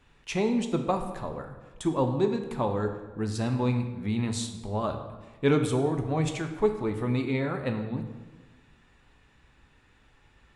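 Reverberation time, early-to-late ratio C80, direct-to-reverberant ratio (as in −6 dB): 1.3 s, 10.0 dB, 5.0 dB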